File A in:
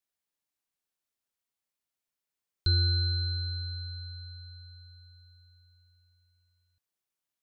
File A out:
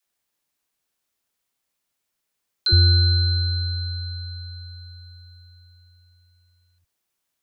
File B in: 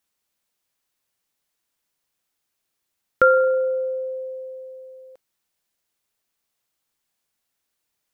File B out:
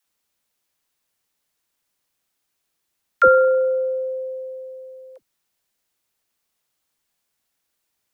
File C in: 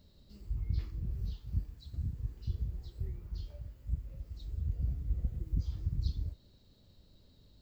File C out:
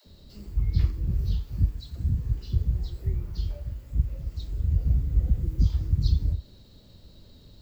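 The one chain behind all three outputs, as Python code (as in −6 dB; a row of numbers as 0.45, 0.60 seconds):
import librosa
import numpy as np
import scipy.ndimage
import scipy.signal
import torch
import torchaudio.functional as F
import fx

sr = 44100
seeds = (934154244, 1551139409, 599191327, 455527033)

y = fx.dispersion(x, sr, late='lows', ms=68.0, hz=340.0)
y = y * 10.0 ** (-26 / 20.0) / np.sqrt(np.mean(np.square(y)))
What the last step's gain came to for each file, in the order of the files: +10.0, +2.5, +11.0 decibels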